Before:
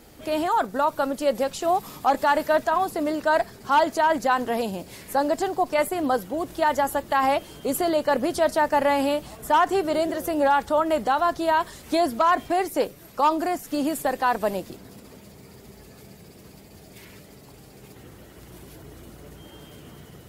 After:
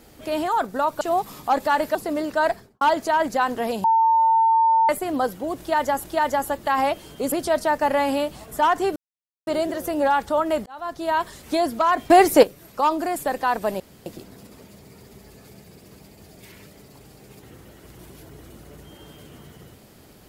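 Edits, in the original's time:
0:01.01–0:01.58: remove
0:02.52–0:02.85: remove
0:03.41–0:03.71: fade out and dull
0:04.74–0:05.79: beep over 901 Hz −14 dBFS
0:06.49–0:06.94: repeat, 2 plays
0:07.77–0:08.23: remove
0:09.87: splice in silence 0.51 s
0:11.06–0:11.60: fade in
0:12.50–0:12.83: clip gain +10.5 dB
0:13.56–0:13.95: remove
0:14.59: splice in room tone 0.26 s

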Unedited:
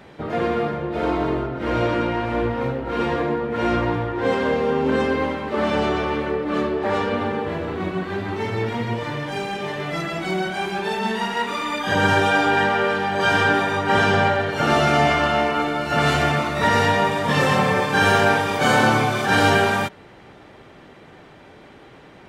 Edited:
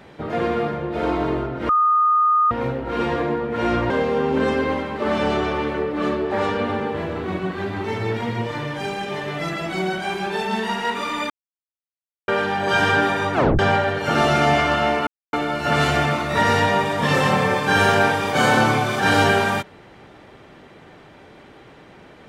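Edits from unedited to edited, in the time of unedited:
0:01.69–0:02.51: beep over 1,230 Hz −13.5 dBFS
0:03.90–0:04.42: remove
0:11.82–0:12.80: silence
0:13.86: tape stop 0.25 s
0:15.59: splice in silence 0.26 s

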